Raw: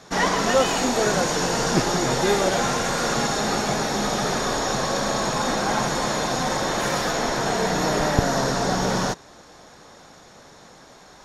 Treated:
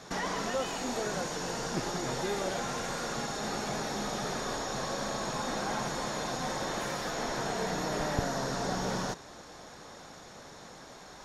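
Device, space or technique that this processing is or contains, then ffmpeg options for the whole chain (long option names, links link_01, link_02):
de-esser from a sidechain: -filter_complex "[0:a]asplit=2[link_01][link_02];[link_02]highpass=frequency=5900:poles=1,apad=whole_len=495975[link_03];[link_01][link_03]sidechaincompress=threshold=-40dB:ratio=8:attack=2.2:release=35,volume=-1.5dB"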